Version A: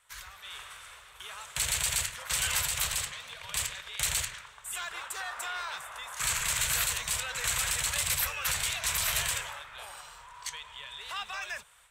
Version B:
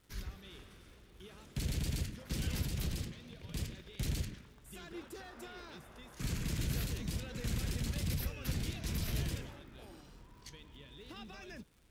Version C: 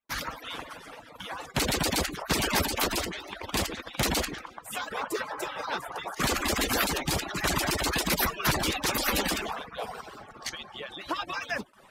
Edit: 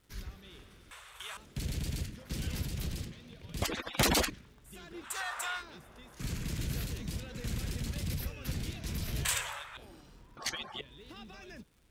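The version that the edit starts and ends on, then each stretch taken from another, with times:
B
0:00.91–0:01.37: punch in from A
0:03.62–0:04.30: punch in from C
0:05.07–0:05.59: punch in from A, crossfade 0.10 s
0:09.25–0:09.77: punch in from A
0:10.37–0:10.81: punch in from C

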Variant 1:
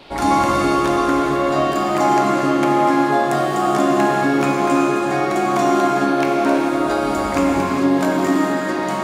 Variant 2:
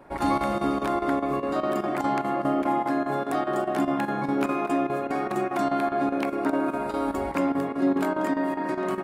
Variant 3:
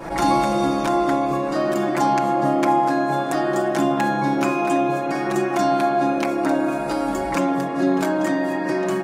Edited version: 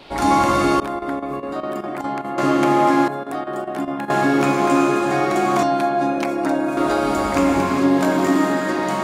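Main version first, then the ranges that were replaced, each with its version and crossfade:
1
0:00.80–0:02.38: punch in from 2
0:03.08–0:04.10: punch in from 2
0:05.63–0:06.77: punch in from 3

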